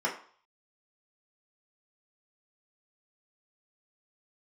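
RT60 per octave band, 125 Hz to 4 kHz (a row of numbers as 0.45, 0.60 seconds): 0.30, 0.40, 0.45, 0.55, 0.45, 0.50 seconds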